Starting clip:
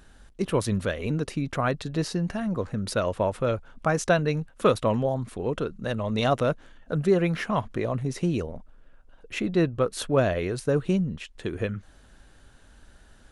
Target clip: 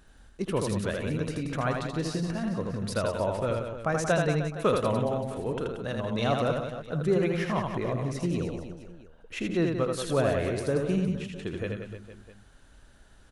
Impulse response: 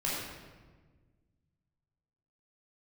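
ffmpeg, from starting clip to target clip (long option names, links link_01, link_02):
-af "aecho=1:1:80|180|305|461.2|656.6:0.631|0.398|0.251|0.158|0.1,volume=-4.5dB"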